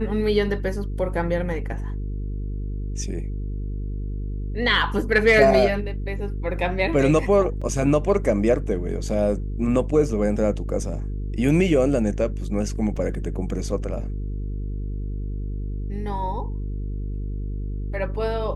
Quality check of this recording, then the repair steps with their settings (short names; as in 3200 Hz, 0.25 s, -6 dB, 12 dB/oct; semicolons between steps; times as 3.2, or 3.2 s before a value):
buzz 50 Hz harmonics 9 -28 dBFS
7.61–7.62 gap 5.5 ms
12.96–12.97 gap 5.3 ms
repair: de-hum 50 Hz, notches 9; interpolate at 7.61, 5.5 ms; interpolate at 12.96, 5.3 ms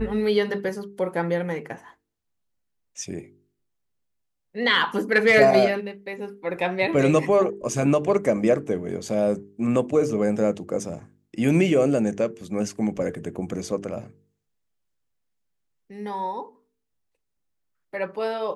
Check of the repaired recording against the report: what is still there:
none